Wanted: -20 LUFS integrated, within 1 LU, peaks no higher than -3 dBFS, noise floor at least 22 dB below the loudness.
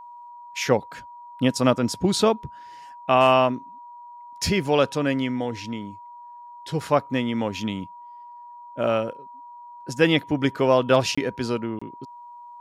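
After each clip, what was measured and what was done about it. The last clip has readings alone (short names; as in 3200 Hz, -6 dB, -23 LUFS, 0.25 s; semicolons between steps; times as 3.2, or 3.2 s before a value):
dropouts 2; longest dropout 25 ms; steady tone 960 Hz; tone level -40 dBFS; loudness -23.0 LUFS; peak -5.0 dBFS; loudness target -20.0 LUFS
-> interpolate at 11.15/11.79, 25 ms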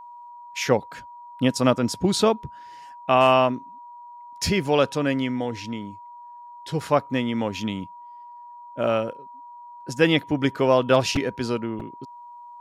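dropouts 0; steady tone 960 Hz; tone level -40 dBFS
-> notch 960 Hz, Q 30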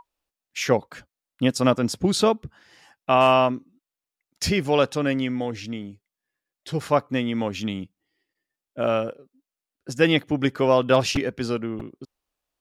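steady tone none; loudness -23.0 LUFS; peak -5.0 dBFS; loudness target -20.0 LUFS
-> gain +3 dB; limiter -3 dBFS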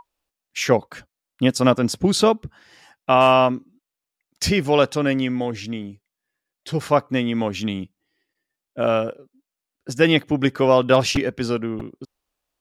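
loudness -20.0 LUFS; peak -3.0 dBFS; noise floor -86 dBFS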